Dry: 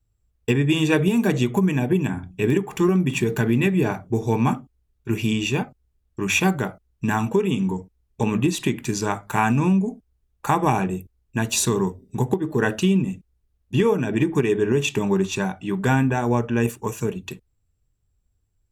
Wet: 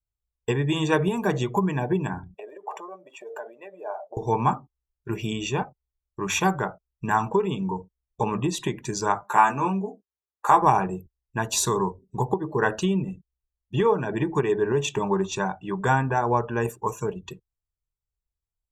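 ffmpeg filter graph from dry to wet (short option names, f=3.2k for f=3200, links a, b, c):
-filter_complex "[0:a]asettb=1/sr,asplit=3[a][b][c];[a]atrim=end=2.344[d];[b]atrim=start=2.34:end=4.17,asetpts=PTS-STARTPTS,afade=t=in:d=0.004:c=qsin,afade=t=out:st=1.826:d=0.004:c=qsin,acompressor=threshold=-33dB:ratio=6:attack=3.2:release=140:knee=1:detection=peak,highpass=f=590:t=q:w=5.2[e];[c]atrim=start=4.166[f];[d][e]acrossfade=d=0.004:c1=hsin:c2=qsin[g];[g][f]acrossfade=d=0.004:c1=qsin:c2=hsin,asettb=1/sr,asplit=3[h][i][j];[h]atrim=end=9.234[k];[i]atrim=start=9.23:end=10.62,asetpts=PTS-STARTPTS,afade=t=in:d=0.004:c=qsin,afade=t=out:st=1.386:d=0.004:c=qsin,highpass=260,asplit=2[l][m];[m]adelay=15,volume=-4dB[n];[l][n]amix=inputs=2:normalize=0,atrim=end_sample=61299[o];[j]atrim=start=10.616[p];[k][o]acrossfade=d=0.004:c1=hsin:c2=qsin[q];[q][p]acrossfade=d=0.004:c1=qsin:c2=hsin,afftdn=nr=17:nf=-41,equalizer=f=100:t=o:w=0.67:g=-7,equalizer=f=250:t=o:w=0.67:g=-11,equalizer=f=1k:t=o:w=0.67:g=6,equalizer=f=2.5k:t=o:w=0.67:g=-8,equalizer=f=10k:t=o:w=0.67:g=-5"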